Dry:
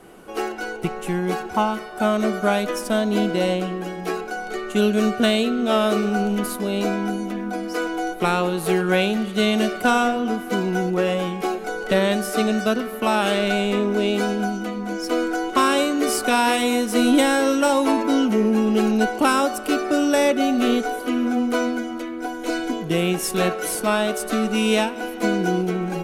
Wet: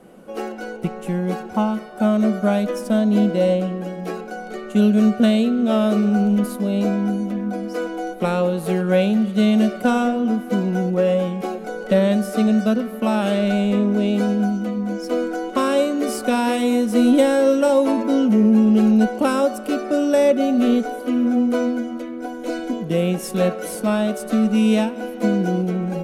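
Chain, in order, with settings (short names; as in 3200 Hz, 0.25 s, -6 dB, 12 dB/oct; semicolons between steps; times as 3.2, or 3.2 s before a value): small resonant body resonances 210/530 Hz, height 12 dB, ringing for 30 ms; gain -6 dB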